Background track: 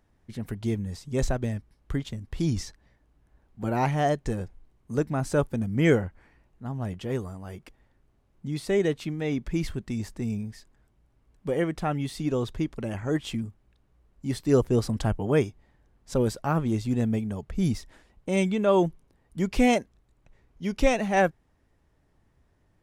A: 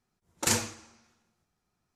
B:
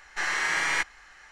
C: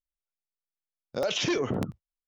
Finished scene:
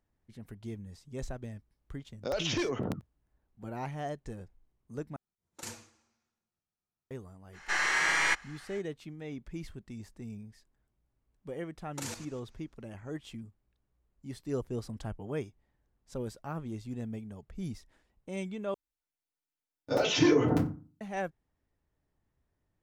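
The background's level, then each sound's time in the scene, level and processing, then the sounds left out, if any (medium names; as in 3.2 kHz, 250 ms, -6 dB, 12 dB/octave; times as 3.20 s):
background track -13 dB
1.09 s: add C -4.5 dB
5.16 s: replace with A -17 dB
7.52 s: add B -1 dB, fades 0.05 s
11.55 s: add A -6 dB + level held to a coarse grid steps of 11 dB
18.74 s: replace with C -5.5 dB + FDN reverb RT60 0.35 s, low-frequency decay 1.3×, high-frequency decay 0.55×, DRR -6 dB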